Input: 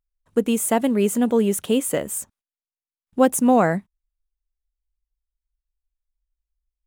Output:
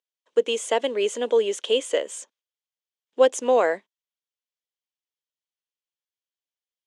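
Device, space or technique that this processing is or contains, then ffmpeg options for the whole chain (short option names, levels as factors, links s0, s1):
phone speaker on a table: -af "highpass=f=400:w=0.5412,highpass=f=400:w=1.3066,equalizer=f=490:t=q:w=4:g=4,equalizer=f=760:t=q:w=4:g=-6,equalizer=f=1300:t=q:w=4:g=-6,equalizer=f=3200:t=q:w=4:g=8,equalizer=f=6500:t=q:w=4:g=3,lowpass=f=6900:w=0.5412,lowpass=f=6900:w=1.3066"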